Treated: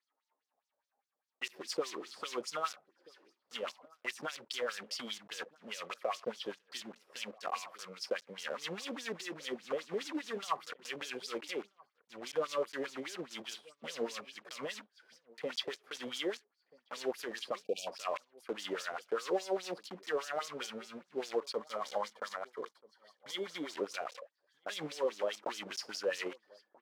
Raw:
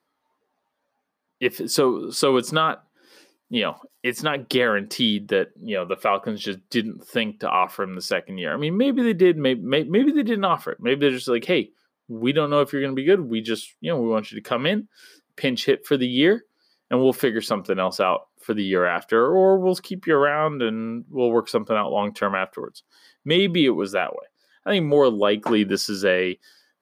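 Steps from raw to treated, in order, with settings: block floating point 3-bit; 17.59–17.87 spectral delete 780–2300 Hz; 21.53–23.73 notch 2600 Hz, Q 5.5; limiter -15 dBFS, peak gain reduction 8.5 dB; LFO band-pass sine 4.9 Hz 490–6200 Hz; outdoor echo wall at 220 m, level -24 dB; gain -4.5 dB

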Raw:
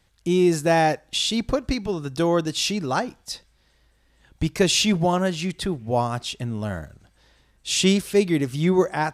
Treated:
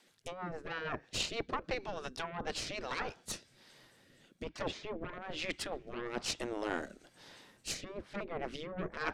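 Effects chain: treble ducked by the level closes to 940 Hz, closed at -16 dBFS; added harmonics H 8 -22 dB, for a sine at -7 dBFS; reverse; compressor 10:1, threshold -29 dBFS, peak gain reduction 16 dB; reverse; spectral gate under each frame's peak -10 dB weak; rotary speaker horn 6.3 Hz, later 1.1 Hz, at 1.92; gain +6 dB

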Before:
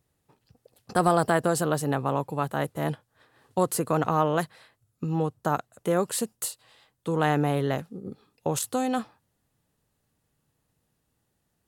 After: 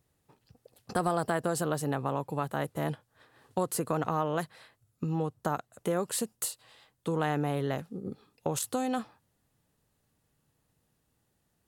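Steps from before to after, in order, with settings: compressor 2:1, threshold -30 dBFS, peak gain reduction 8 dB

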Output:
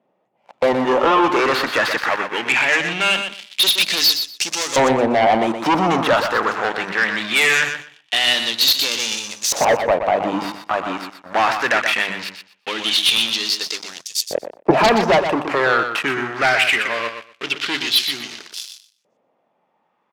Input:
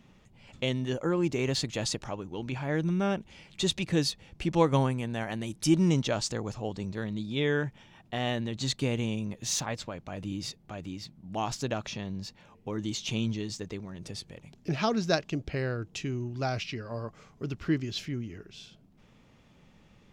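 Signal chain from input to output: switching dead time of 0.076 ms; HPF 180 Hz 12 dB/oct; notches 50/100/150/200/250/300 Hz; sample leveller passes 5; LFO band-pass saw up 0.21 Hz 590–6700 Hz; added harmonics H 5 -7 dB, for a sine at -12 dBFS; feedback echo 0.122 s, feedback 17%, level -8 dB; 14.01–14.71 three-band expander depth 100%; gain +4 dB

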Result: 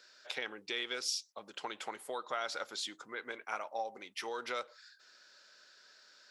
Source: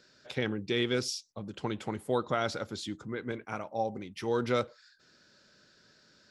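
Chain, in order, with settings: compressor 6:1, threshold -31 dBFS, peak gain reduction 8 dB; HPF 740 Hz 12 dB/oct; gain +2.5 dB

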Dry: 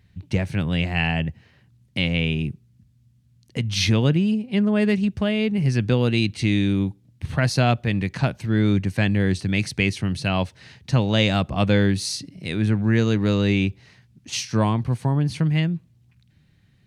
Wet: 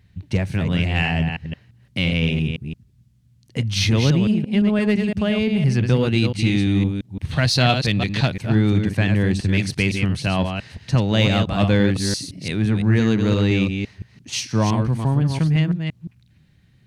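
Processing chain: reverse delay 0.171 s, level -6 dB; 7.31–8.34 bell 3800 Hz +11.5 dB 0.9 oct; in parallel at -11 dB: hard clip -19 dBFS, distortion -9 dB; on the sum: bell 63 Hz +2 dB 2.4 oct; gain -1 dB

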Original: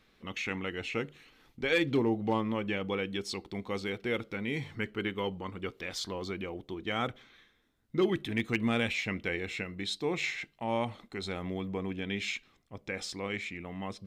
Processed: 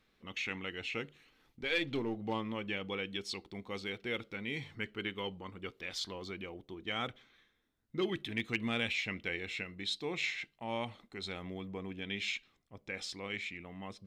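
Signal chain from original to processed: 1.63–2.17 half-wave gain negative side -3 dB; dynamic EQ 3300 Hz, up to +7 dB, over -48 dBFS, Q 0.78; gain -7 dB

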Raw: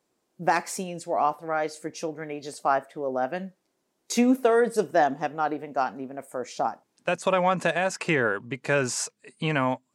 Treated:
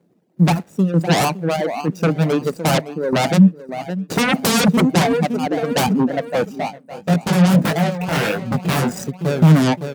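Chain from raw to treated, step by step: median filter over 41 samples; reverb removal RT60 1.4 s; random-step tremolo 3.2 Hz, depth 80%; feedback echo 0.562 s, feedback 39%, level -17.5 dB; sine folder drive 20 dB, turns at -14 dBFS; HPF 92 Hz; bell 170 Hz +13.5 dB 0.6 oct; 6.55–8.92 chorus 1.6 Hz, delay 18 ms, depth 4.4 ms; high shelf 8400 Hz +3.5 dB

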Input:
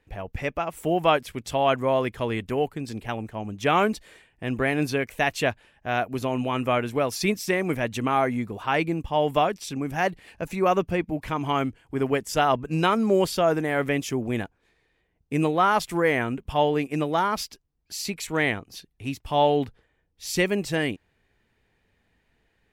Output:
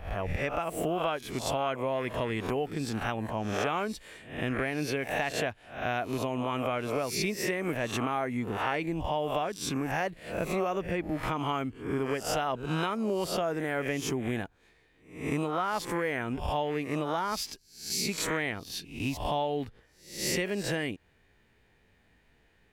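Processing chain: spectral swells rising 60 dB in 0.49 s; compressor 6:1, threshold -29 dBFS, peak gain reduction 15 dB; gain +1.5 dB

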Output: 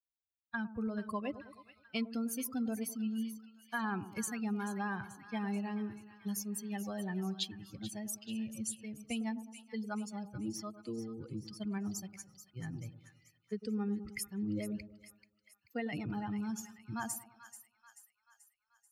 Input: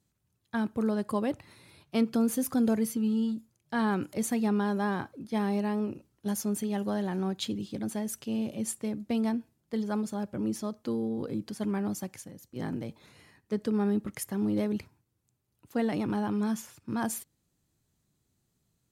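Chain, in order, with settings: per-bin expansion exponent 2; passive tone stack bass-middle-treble 5-5-5; compressor 3:1, threshold -52 dBFS, peak gain reduction 10.5 dB; high shelf 4600 Hz -6 dB; split-band echo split 1100 Hz, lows 0.104 s, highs 0.435 s, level -12.5 dB; gain +17.5 dB

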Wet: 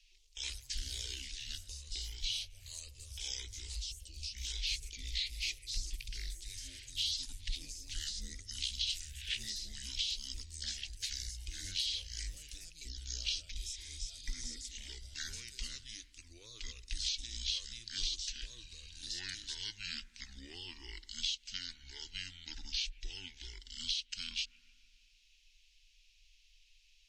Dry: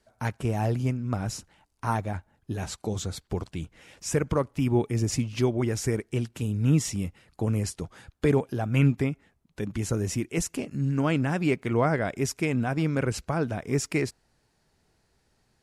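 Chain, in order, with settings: inverse Chebyshev band-stop 120–2300 Hz, stop band 40 dB; spring tank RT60 1.1 s, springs 54 ms, chirp 30 ms, DRR 17 dB; speed mistake 78 rpm record played at 45 rpm; compressor 16:1, threshold -42 dBFS, peak gain reduction 15.5 dB; echoes that change speed 0.141 s, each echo +4 st, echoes 3, each echo -6 dB; spectral repair 13.61–14.59, 2400–5100 Hz both; gain +9 dB

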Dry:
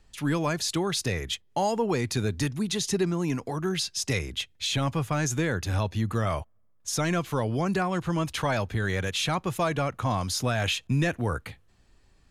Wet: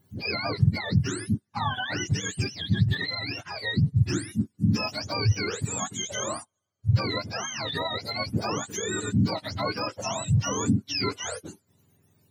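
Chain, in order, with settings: spectrum mirrored in octaves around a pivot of 840 Hz

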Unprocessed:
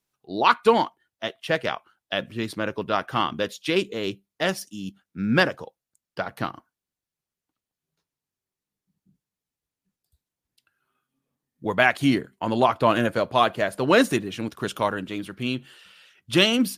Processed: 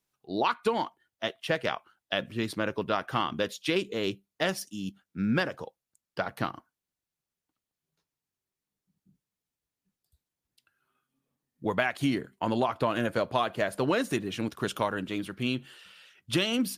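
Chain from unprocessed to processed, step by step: compressor 10:1, threshold -21 dBFS, peak gain reduction 10.5 dB; gain -1.5 dB

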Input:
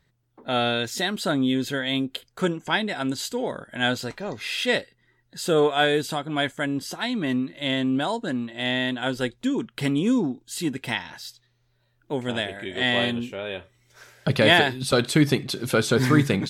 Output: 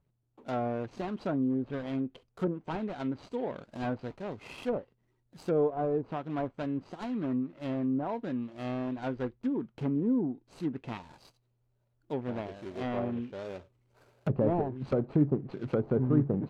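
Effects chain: median filter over 25 samples; treble ducked by the level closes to 730 Hz, closed at -19.5 dBFS; gain -6 dB

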